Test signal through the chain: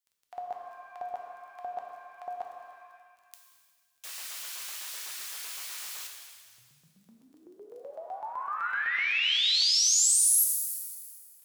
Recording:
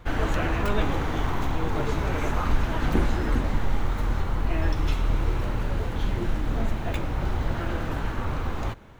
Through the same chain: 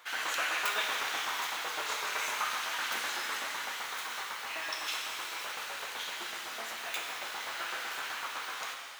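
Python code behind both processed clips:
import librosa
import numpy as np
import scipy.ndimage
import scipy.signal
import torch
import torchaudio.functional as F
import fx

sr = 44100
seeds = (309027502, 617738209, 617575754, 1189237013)

y = fx.hum_notches(x, sr, base_hz=50, count=6)
y = fx.filter_lfo_highpass(y, sr, shape='saw_up', hz=7.9, low_hz=800.0, high_hz=2600.0, q=0.78)
y = fx.dmg_crackle(y, sr, seeds[0], per_s=20.0, level_db=-54.0)
y = fx.high_shelf(y, sr, hz=2900.0, db=9.0)
y = fx.rev_shimmer(y, sr, seeds[1], rt60_s=1.7, semitones=7, shimmer_db=-8, drr_db=1.5)
y = y * 10.0 ** (-2.5 / 20.0)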